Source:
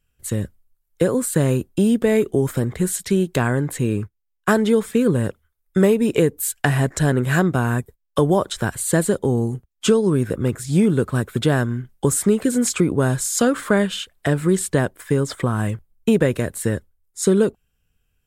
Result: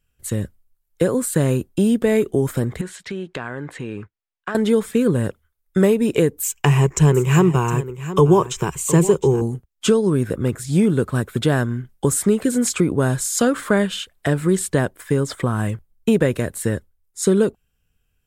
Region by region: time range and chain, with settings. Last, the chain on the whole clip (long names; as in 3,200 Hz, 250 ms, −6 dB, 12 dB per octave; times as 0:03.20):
0:02.81–0:04.55: low-pass filter 2,300 Hz + spectral tilt +3 dB per octave + downward compressor 4 to 1, threshold −24 dBFS
0:06.43–0:09.42: EQ curve with evenly spaced ripples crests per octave 0.74, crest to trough 13 dB + single-tap delay 713 ms −13.5 dB
whole clip: no processing